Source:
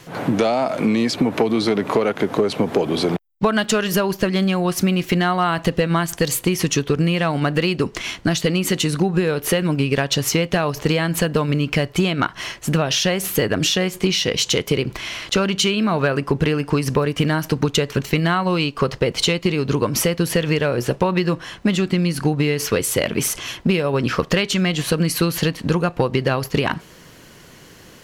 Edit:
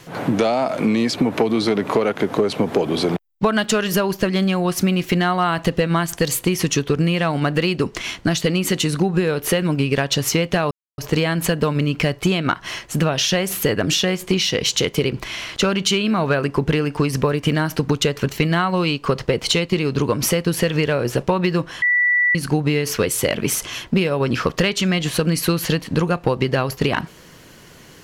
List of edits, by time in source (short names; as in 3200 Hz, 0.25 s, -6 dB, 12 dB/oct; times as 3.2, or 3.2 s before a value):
10.71 insert silence 0.27 s
21.55–22.08 bleep 1960 Hz -13.5 dBFS